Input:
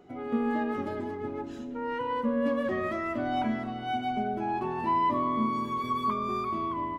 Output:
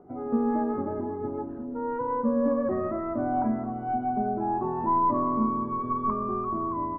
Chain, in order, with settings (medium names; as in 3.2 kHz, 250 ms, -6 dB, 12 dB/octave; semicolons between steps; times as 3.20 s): tracing distortion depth 0.059 ms; low-pass 1.2 kHz 24 dB/octave; trim +3 dB